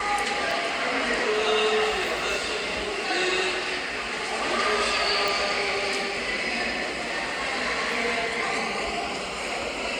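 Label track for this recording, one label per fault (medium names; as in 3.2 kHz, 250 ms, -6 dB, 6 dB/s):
0.510000	0.510000	dropout 3 ms
5.280000	5.280000	pop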